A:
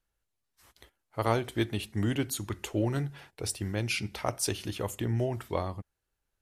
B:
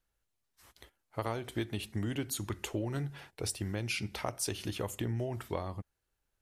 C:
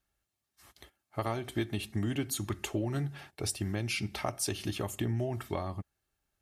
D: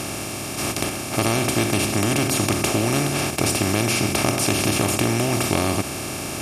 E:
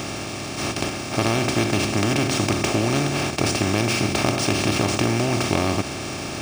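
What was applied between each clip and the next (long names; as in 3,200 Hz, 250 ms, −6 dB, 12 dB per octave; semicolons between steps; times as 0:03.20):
downward compressor 5 to 1, threshold −31 dBFS, peak gain reduction 10.5 dB
notch comb filter 490 Hz; level +3 dB
compressor on every frequency bin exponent 0.2; level +5 dB
linearly interpolated sample-rate reduction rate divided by 3×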